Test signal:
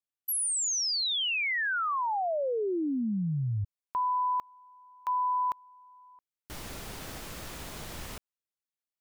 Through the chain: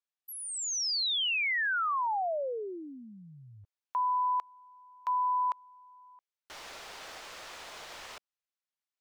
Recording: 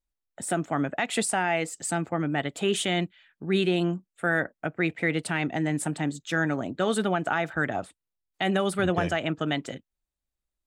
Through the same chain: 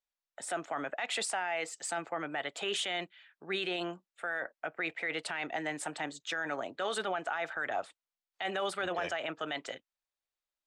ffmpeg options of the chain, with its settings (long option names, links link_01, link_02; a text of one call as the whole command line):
ffmpeg -i in.wav -filter_complex "[0:a]acrossover=split=470 7000:gain=0.0794 1 0.178[link_01][link_02][link_03];[link_01][link_02][link_03]amix=inputs=3:normalize=0,alimiter=level_in=0.5dB:limit=-24dB:level=0:latency=1:release=16,volume=-0.5dB" out.wav